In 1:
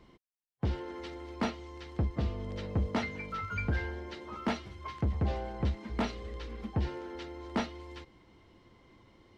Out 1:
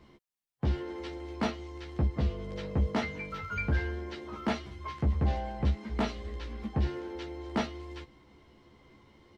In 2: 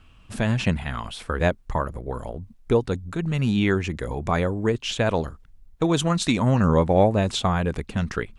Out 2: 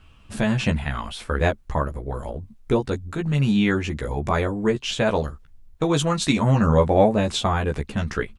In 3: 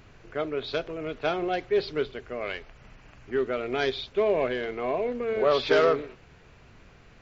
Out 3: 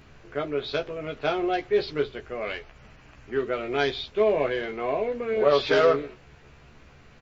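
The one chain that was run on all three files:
doubler 14 ms -4 dB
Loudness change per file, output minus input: +2.0, +1.0, +1.5 LU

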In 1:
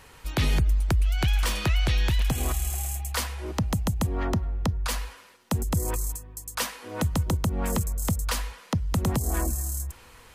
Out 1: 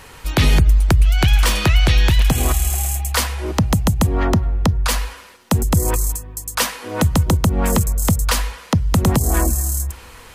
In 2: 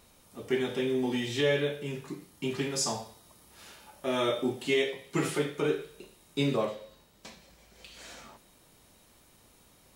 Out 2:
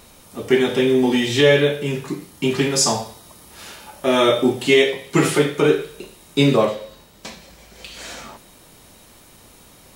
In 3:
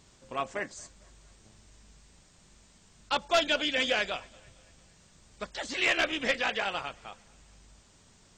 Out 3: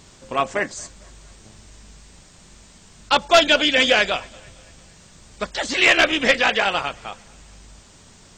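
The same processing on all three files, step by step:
de-hum 62.24 Hz, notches 2; match loudness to -18 LUFS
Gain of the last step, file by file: +10.0, +12.5, +11.5 dB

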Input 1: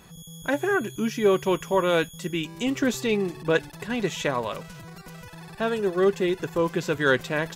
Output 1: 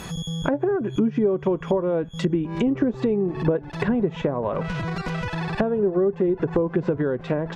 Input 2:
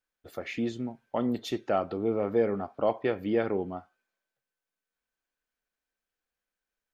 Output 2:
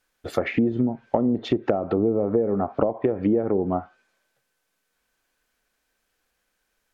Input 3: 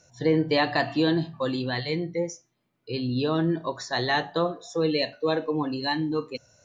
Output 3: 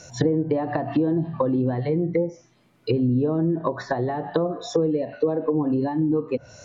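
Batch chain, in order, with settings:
compressor 16:1, threshold -32 dBFS; treble ducked by the level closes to 620 Hz, closed at -32.5 dBFS; match loudness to -24 LUFS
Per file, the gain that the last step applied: +15.0, +15.5, +15.0 dB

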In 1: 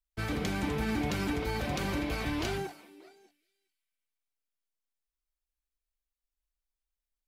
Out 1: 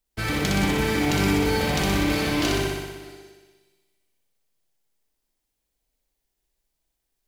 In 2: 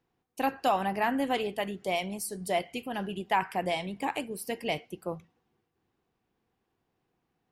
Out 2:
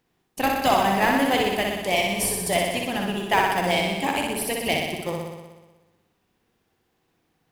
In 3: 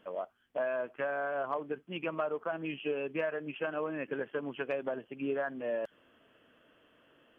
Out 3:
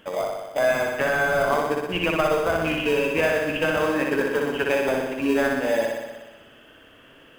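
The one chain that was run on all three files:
tilt shelf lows -4 dB, about 1300 Hz; in parallel at -8.5 dB: sample-rate reducer 1400 Hz, jitter 0%; on the sum: flutter echo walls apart 10.5 m, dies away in 1.2 s; match loudness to -23 LUFS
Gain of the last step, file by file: +6.0, +6.0, +11.0 dB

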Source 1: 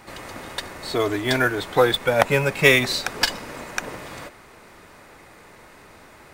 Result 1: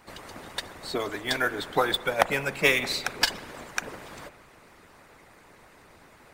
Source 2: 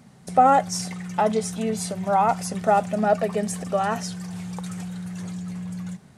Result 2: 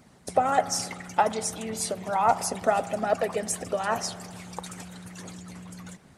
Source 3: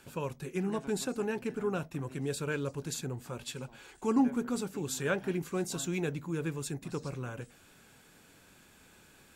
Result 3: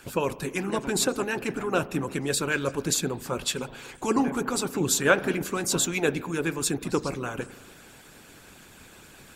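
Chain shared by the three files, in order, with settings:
spring tank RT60 1.5 s, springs 36 ms, chirp 55 ms, DRR 11.5 dB; harmonic-percussive split harmonic -14 dB; match loudness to -27 LUFS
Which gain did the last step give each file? -2.0, +3.0, +14.0 dB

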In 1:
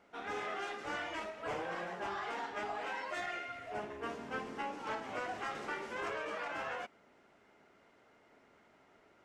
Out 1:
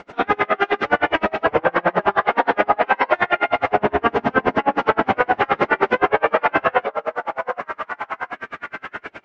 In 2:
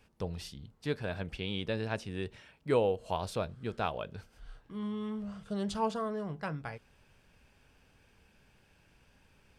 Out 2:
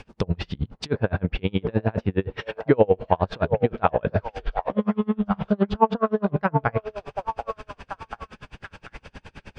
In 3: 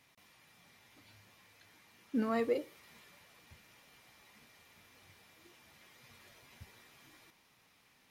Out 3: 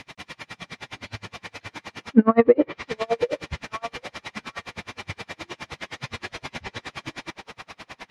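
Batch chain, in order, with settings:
in parallel at -0.5 dB: negative-ratio compressor -44 dBFS, ratio -1; on the sum: treble ducked by the level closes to 1800 Hz, closed at -31 dBFS; air absorption 87 m; on a send: delay with a stepping band-pass 0.738 s, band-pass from 640 Hz, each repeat 0.7 oct, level -4 dB; on the sum: dB-linear tremolo 9.6 Hz, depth 35 dB; normalise peaks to -2 dBFS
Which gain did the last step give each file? +24.0, +17.0, +21.0 dB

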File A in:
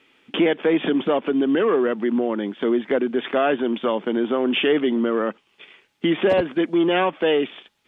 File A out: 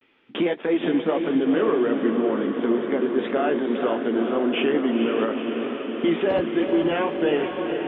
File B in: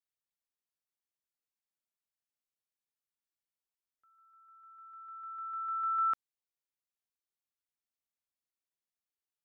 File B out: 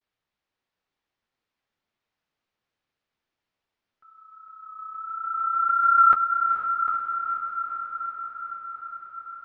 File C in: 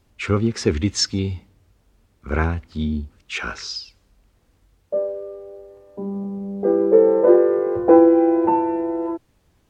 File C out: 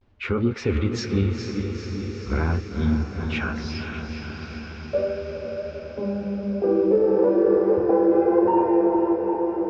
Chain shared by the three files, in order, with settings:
regenerating reverse delay 0.407 s, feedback 46%, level -13 dB; limiter -12 dBFS; vibrato 0.38 Hz 48 cents; flange 1.5 Hz, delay 7 ms, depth 7.8 ms, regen -34%; air absorption 220 m; on a send: diffused feedback echo 0.469 s, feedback 74%, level -7 dB; on the sum: match loudness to -23 LUFS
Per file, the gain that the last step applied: +2.0, +19.5, +4.0 dB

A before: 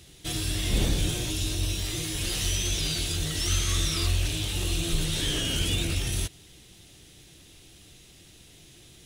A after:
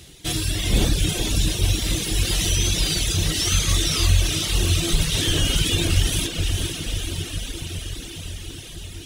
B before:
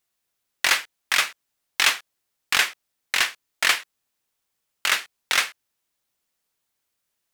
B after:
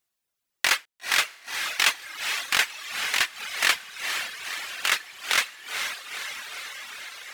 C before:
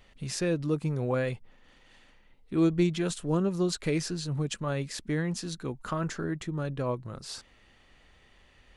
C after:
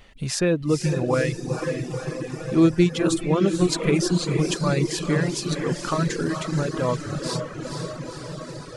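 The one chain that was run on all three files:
diffused feedback echo 0.481 s, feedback 74%, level -5 dB; reverb removal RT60 1.1 s; normalise peaks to -6 dBFS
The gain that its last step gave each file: +7.0, -2.0, +8.0 dB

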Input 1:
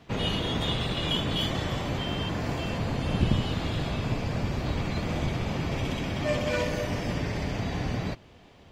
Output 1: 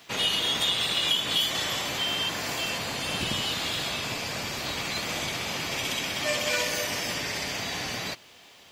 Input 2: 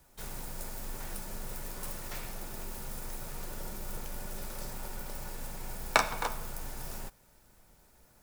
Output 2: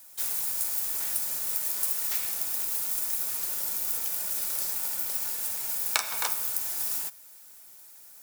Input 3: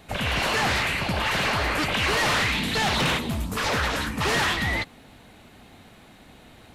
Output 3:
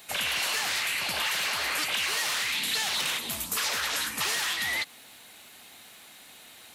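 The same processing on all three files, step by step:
tilt +4.5 dB/oct; compressor 5:1, threshold -23 dBFS; match loudness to -27 LUFS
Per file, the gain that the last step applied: +1.5, +0.5, -3.0 dB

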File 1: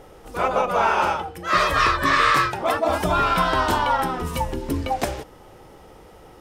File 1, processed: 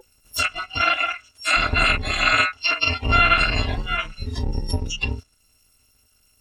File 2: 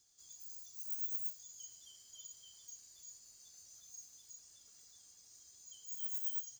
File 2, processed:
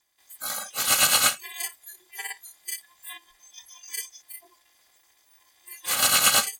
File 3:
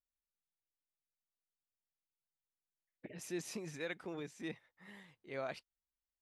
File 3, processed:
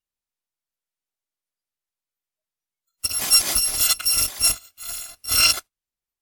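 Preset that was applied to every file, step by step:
FFT order left unsorted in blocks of 256 samples; treble ducked by the level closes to 2600 Hz, closed at -19.5 dBFS; spectral noise reduction 22 dB; normalise peaks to -6 dBFS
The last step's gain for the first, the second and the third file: +9.5, +22.0, +26.0 dB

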